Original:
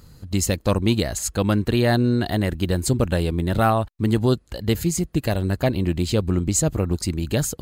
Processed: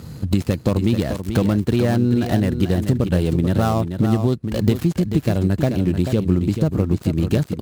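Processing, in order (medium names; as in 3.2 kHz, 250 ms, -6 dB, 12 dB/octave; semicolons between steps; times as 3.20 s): dead-time distortion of 0.11 ms; high-pass 110 Hz 12 dB/octave; bass shelf 390 Hz +9.5 dB; compression 6:1, threshold -24 dBFS, peak gain reduction 16 dB; on a send: delay 437 ms -8 dB; on the sum: trim +8.5 dB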